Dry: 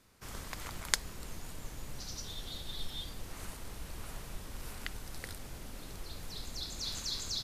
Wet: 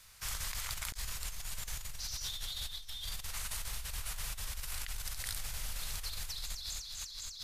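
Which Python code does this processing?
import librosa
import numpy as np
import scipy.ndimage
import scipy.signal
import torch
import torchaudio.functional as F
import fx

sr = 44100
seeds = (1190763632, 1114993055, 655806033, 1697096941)

p1 = fx.tone_stack(x, sr, knobs='10-0-10')
p2 = fx.over_compress(p1, sr, threshold_db=-49.0, ratio=-1.0)
p3 = p2 + fx.echo_single(p2, sr, ms=744, db=-20.5, dry=0)
y = F.gain(torch.from_numpy(p3), 8.5).numpy()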